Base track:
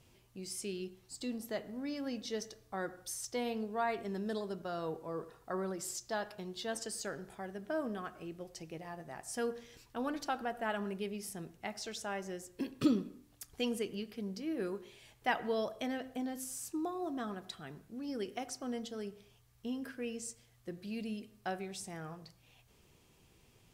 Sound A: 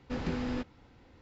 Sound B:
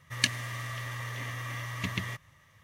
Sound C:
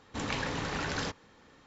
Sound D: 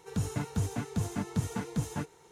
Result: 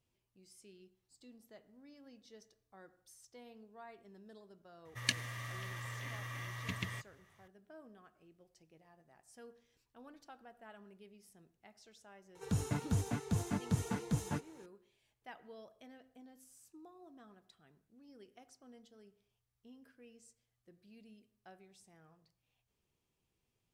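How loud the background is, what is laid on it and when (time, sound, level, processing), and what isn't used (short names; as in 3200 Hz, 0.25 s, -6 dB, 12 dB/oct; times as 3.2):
base track -19 dB
4.85 add B -7 dB
12.35 add D -3 dB
not used: A, C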